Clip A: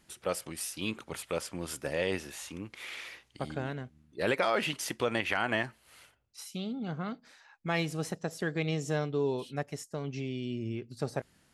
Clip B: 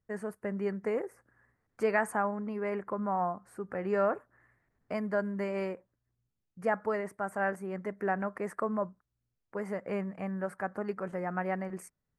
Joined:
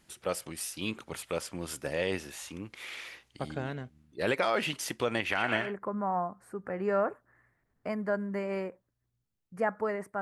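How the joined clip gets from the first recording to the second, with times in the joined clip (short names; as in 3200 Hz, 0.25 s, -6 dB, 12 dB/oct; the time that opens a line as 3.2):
clip A
5.21–5.74 narrowing echo 0.118 s, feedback 83%, band-pass 2000 Hz, level -4 dB
5.65 switch to clip B from 2.7 s, crossfade 0.18 s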